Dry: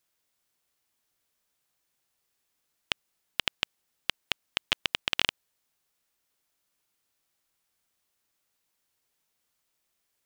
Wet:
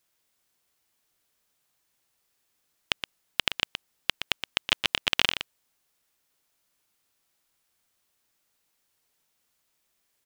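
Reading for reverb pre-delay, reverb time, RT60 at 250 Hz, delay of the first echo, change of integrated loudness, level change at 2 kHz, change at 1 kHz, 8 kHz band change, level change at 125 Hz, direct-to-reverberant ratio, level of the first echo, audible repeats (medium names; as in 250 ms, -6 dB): no reverb, no reverb, no reverb, 120 ms, +3.5 dB, +3.5 dB, +3.5 dB, +3.5 dB, +3.5 dB, no reverb, -9.0 dB, 1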